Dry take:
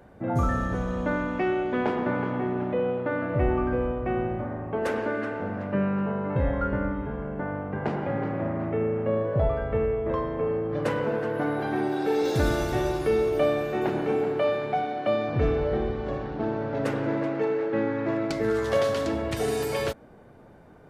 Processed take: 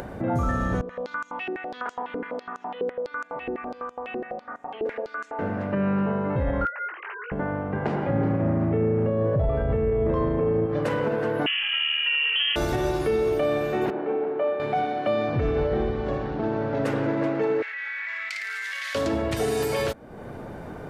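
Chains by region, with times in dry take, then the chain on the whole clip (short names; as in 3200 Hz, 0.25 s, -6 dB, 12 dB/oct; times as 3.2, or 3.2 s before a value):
0.81–5.39 comb 4.2 ms, depth 78% + stepped band-pass 12 Hz 380–6900 Hz
6.65–7.32 sine-wave speech + Chebyshev high-pass 2000 Hz + doubler 19 ms -7.5 dB
8.09–10.66 low shelf 380 Hz +8.5 dB + doubler 36 ms -11 dB
11.46–12.56 air absorption 470 m + small resonant body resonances 1300/1900 Hz, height 16 dB, ringing for 85 ms + inverted band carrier 3200 Hz
13.9–14.6 HPF 350 Hz + tape spacing loss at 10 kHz 44 dB
17.62–18.95 ladder high-pass 1800 Hz, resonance 65% + flutter echo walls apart 9.4 m, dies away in 0.64 s + fast leveller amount 100%
whole clip: limiter -19 dBFS; upward compressor, threshold -29 dBFS; gain +3 dB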